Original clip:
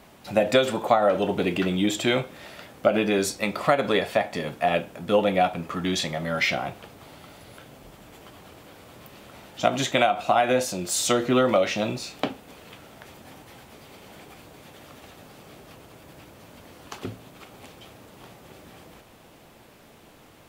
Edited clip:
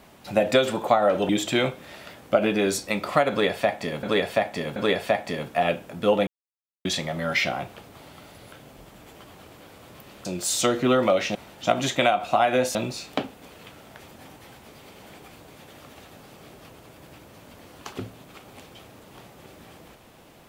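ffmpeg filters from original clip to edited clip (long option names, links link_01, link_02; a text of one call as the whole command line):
ffmpeg -i in.wav -filter_complex "[0:a]asplit=9[link_01][link_02][link_03][link_04][link_05][link_06][link_07][link_08][link_09];[link_01]atrim=end=1.292[link_10];[link_02]atrim=start=1.808:end=4.552[link_11];[link_03]atrim=start=3.818:end=4.552[link_12];[link_04]atrim=start=3.818:end=5.33,asetpts=PTS-STARTPTS,afade=type=out:start_time=1.508:duration=0.004:curve=hsin[link_13];[link_05]atrim=start=5.33:end=5.91,asetpts=PTS-STARTPTS,volume=0[link_14];[link_06]atrim=start=5.91:end=9.312,asetpts=PTS-STARTPTS,afade=type=in:duration=0.004:curve=hsin[link_15];[link_07]atrim=start=10.708:end=11.812[link_16];[link_08]atrim=start=9.308:end=10.712[link_17];[link_09]atrim=start=11.808[link_18];[link_10][link_11]acrossfade=duration=0.004:curve1=hsin:curve2=hsin[link_19];[link_19][link_12]acrossfade=duration=0.004:curve1=hsin:curve2=hsin[link_20];[link_13][link_14][link_15]concat=n=3:v=0:a=1[link_21];[link_20][link_21]acrossfade=duration=0.004:curve1=hsin:curve2=hsin[link_22];[link_22][link_16]acrossfade=duration=0.004:curve1=hsin:curve2=hsin[link_23];[link_23][link_17]acrossfade=duration=0.004:curve1=hsin:curve2=hsin[link_24];[link_24][link_18]acrossfade=duration=0.004:curve1=hsin:curve2=hsin" out.wav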